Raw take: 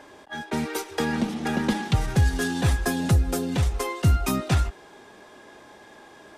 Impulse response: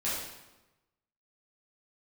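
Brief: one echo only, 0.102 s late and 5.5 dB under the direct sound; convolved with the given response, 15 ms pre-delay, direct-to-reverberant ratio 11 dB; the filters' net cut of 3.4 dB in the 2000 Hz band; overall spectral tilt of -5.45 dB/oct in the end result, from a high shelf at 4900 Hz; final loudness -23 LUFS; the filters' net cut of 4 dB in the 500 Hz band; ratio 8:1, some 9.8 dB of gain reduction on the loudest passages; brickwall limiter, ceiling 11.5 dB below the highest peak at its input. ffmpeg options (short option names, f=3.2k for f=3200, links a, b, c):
-filter_complex "[0:a]equalizer=f=500:t=o:g=-5,equalizer=f=2k:t=o:g=-3,highshelf=f=4.9k:g=-7.5,acompressor=threshold=-25dB:ratio=8,alimiter=level_in=3.5dB:limit=-24dB:level=0:latency=1,volume=-3.5dB,aecho=1:1:102:0.531,asplit=2[a][b];[1:a]atrim=start_sample=2205,adelay=15[c];[b][c]afir=irnorm=-1:irlink=0,volume=-18dB[d];[a][d]amix=inputs=2:normalize=0,volume=12dB"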